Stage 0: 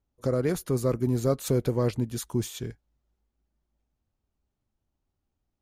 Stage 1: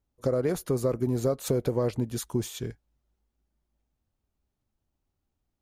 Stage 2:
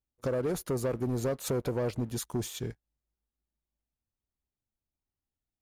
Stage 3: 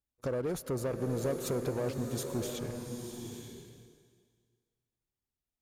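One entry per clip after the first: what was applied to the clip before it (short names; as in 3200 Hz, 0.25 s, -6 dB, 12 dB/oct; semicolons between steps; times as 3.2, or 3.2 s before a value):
dynamic EQ 620 Hz, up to +6 dB, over -39 dBFS, Q 0.88; compressor, threshold -22 dBFS, peak gain reduction 7.5 dB
sample leveller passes 2; gain -8.5 dB
vibrato 4.9 Hz 37 cents; bloom reverb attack 0.89 s, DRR 4.5 dB; gain -3 dB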